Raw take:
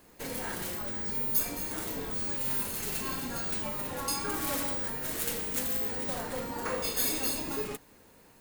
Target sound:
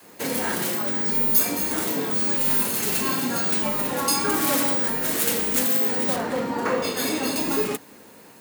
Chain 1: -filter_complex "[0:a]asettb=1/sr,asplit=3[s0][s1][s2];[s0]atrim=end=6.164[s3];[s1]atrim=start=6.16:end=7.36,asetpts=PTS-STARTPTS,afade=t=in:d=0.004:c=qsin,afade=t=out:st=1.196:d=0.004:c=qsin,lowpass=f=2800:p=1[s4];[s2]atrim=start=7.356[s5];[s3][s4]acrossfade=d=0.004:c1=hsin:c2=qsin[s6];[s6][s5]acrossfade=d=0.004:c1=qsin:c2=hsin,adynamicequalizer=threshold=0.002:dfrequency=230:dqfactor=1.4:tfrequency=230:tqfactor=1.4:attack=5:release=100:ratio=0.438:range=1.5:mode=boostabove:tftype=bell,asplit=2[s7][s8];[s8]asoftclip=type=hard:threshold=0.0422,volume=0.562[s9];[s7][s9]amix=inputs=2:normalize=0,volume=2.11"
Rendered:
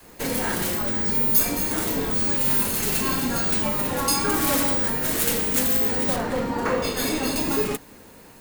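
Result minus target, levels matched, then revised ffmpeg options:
125 Hz band +4.5 dB
-filter_complex "[0:a]asettb=1/sr,asplit=3[s0][s1][s2];[s0]atrim=end=6.164[s3];[s1]atrim=start=6.16:end=7.36,asetpts=PTS-STARTPTS,afade=t=in:d=0.004:c=qsin,afade=t=out:st=1.196:d=0.004:c=qsin,lowpass=f=2800:p=1[s4];[s2]atrim=start=7.356[s5];[s3][s4]acrossfade=d=0.004:c1=hsin:c2=qsin[s6];[s6][s5]acrossfade=d=0.004:c1=qsin:c2=hsin,adynamicequalizer=threshold=0.002:dfrequency=230:dqfactor=1.4:tfrequency=230:tqfactor=1.4:attack=5:release=100:ratio=0.438:range=1.5:mode=boostabove:tftype=bell,highpass=160,asplit=2[s7][s8];[s8]asoftclip=type=hard:threshold=0.0422,volume=0.562[s9];[s7][s9]amix=inputs=2:normalize=0,volume=2.11"

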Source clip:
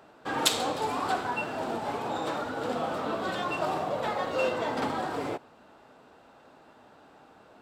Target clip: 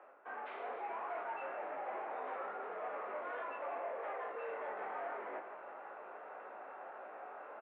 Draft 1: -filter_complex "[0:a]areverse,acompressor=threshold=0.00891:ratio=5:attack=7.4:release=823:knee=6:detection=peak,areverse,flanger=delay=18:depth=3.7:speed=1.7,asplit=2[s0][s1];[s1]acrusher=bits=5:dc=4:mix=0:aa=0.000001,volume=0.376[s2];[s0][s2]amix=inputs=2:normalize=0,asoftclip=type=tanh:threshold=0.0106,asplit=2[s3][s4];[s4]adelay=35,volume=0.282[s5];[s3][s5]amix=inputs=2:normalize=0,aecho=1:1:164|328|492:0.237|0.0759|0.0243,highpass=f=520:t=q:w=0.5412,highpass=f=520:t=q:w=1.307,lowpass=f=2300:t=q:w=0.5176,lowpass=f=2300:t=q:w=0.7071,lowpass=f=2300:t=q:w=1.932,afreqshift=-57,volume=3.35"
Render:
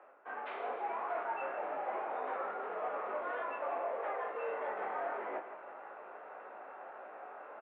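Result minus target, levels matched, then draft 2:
saturation: distortion -9 dB
-filter_complex "[0:a]areverse,acompressor=threshold=0.00891:ratio=5:attack=7.4:release=823:knee=6:detection=peak,areverse,flanger=delay=18:depth=3.7:speed=1.7,asplit=2[s0][s1];[s1]acrusher=bits=5:dc=4:mix=0:aa=0.000001,volume=0.376[s2];[s0][s2]amix=inputs=2:normalize=0,asoftclip=type=tanh:threshold=0.00398,asplit=2[s3][s4];[s4]adelay=35,volume=0.282[s5];[s3][s5]amix=inputs=2:normalize=0,aecho=1:1:164|328|492:0.237|0.0759|0.0243,highpass=f=520:t=q:w=0.5412,highpass=f=520:t=q:w=1.307,lowpass=f=2300:t=q:w=0.5176,lowpass=f=2300:t=q:w=0.7071,lowpass=f=2300:t=q:w=1.932,afreqshift=-57,volume=3.35"

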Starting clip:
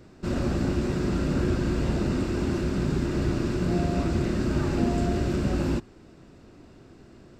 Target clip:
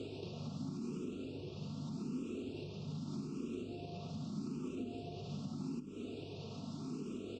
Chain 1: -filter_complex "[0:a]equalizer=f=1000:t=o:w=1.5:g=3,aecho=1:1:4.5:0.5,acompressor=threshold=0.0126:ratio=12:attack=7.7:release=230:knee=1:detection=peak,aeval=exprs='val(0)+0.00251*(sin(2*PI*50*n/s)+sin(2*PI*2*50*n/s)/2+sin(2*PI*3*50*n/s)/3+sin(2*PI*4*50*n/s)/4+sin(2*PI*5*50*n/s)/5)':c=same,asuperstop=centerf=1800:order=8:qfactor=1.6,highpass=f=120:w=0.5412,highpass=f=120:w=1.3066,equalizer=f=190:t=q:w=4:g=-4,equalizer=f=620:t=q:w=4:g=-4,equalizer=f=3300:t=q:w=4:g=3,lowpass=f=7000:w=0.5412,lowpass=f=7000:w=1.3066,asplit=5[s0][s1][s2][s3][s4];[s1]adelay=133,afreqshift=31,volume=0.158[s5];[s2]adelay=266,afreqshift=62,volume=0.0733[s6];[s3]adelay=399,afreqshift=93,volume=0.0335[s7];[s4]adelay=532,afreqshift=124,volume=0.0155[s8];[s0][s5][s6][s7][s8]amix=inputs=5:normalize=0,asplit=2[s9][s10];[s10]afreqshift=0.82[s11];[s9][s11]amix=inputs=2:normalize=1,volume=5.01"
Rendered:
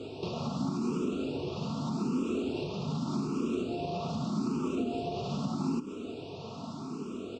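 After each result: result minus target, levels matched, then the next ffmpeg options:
compression: peak gain reduction -10 dB; 1 kHz band +6.5 dB
-filter_complex "[0:a]equalizer=f=1000:t=o:w=1.5:g=3,aecho=1:1:4.5:0.5,acompressor=threshold=0.00335:ratio=12:attack=7.7:release=230:knee=1:detection=peak,aeval=exprs='val(0)+0.00251*(sin(2*PI*50*n/s)+sin(2*PI*2*50*n/s)/2+sin(2*PI*3*50*n/s)/3+sin(2*PI*4*50*n/s)/4+sin(2*PI*5*50*n/s)/5)':c=same,asuperstop=centerf=1800:order=8:qfactor=1.6,highpass=f=120:w=0.5412,highpass=f=120:w=1.3066,equalizer=f=190:t=q:w=4:g=-4,equalizer=f=620:t=q:w=4:g=-4,equalizer=f=3300:t=q:w=4:g=3,lowpass=f=7000:w=0.5412,lowpass=f=7000:w=1.3066,asplit=5[s0][s1][s2][s3][s4];[s1]adelay=133,afreqshift=31,volume=0.158[s5];[s2]adelay=266,afreqshift=62,volume=0.0733[s6];[s3]adelay=399,afreqshift=93,volume=0.0335[s7];[s4]adelay=532,afreqshift=124,volume=0.0155[s8];[s0][s5][s6][s7][s8]amix=inputs=5:normalize=0,asplit=2[s9][s10];[s10]afreqshift=0.82[s11];[s9][s11]amix=inputs=2:normalize=1,volume=5.01"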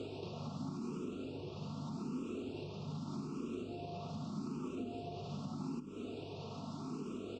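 1 kHz band +6.0 dB
-filter_complex "[0:a]equalizer=f=1000:t=o:w=1.5:g=-6,aecho=1:1:4.5:0.5,acompressor=threshold=0.00335:ratio=12:attack=7.7:release=230:knee=1:detection=peak,aeval=exprs='val(0)+0.00251*(sin(2*PI*50*n/s)+sin(2*PI*2*50*n/s)/2+sin(2*PI*3*50*n/s)/3+sin(2*PI*4*50*n/s)/4+sin(2*PI*5*50*n/s)/5)':c=same,asuperstop=centerf=1800:order=8:qfactor=1.6,highpass=f=120:w=0.5412,highpass=f=120:w=1.3066,equalizer=f=190:t=q:w=4:g=-4,equalizer=f=620:t=q:w=4:g=-4,equalizer=f=3300:t=q:w=4:g=3,lowpass=f=7000:w=0.5412,lowpass=f=7000:w=1.3066,asplit=5[s0][s1][s2][s3][s4];[s1]adelay=133,afreqshift=31,volume=0.158[s5];[s2]adelay=266,afreqshift=62,volume=0.0733[s6];[s3]adelay=399,afreqshift=93,volume=0.0335[s7];[s4]adelay=532,afreqshift=124,volume=0.0155[s8];[s0][s5][s6][s7][s8]amix=inputs=5:normalize=0,asplit=2[s9][s10];[s10]afreqshift=0.82[s11];[s9][s11]amix=inputs=2:normalize=1,volume=5.01"

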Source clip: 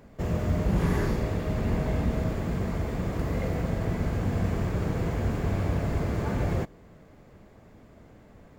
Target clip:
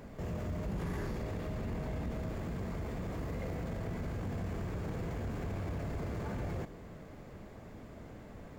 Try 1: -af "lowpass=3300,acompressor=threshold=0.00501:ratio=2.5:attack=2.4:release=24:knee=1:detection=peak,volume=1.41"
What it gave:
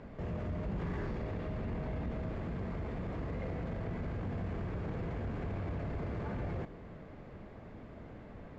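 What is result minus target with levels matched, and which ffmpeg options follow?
4 kHz band -4.0 dB
-af "acompressor=threshold=0.00501:ratio=2.5:attack=2.4:release=24:knee=1:detection=peak,volume=1.41"

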